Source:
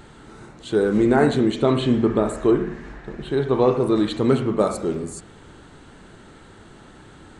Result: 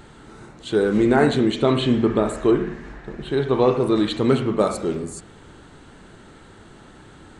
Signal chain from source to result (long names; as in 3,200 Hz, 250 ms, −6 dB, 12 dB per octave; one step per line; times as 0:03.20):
dynamic equaliser 3,000 Hz, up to +4 dB, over −41 dBFS, Q 0.83